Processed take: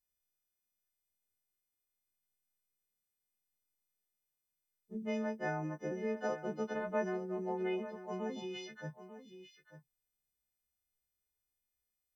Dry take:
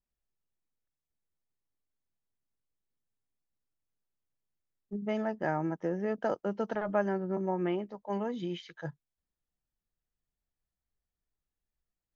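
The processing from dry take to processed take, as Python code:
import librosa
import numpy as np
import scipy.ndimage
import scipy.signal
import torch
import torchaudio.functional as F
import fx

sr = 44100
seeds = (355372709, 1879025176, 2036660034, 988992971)

y = fx.freq_snap(x, sr, grid_st=3)
y = fx.doubler(y, sr, ms=14.0, db=-7.0)
y = y + 10.0 ** (-13.0 / 20.0) * np.pad(y, (int(893 * sr / 1000.0), 0))[:len(y)]
y = y * 10.0 ** (-6.0 / 20.0)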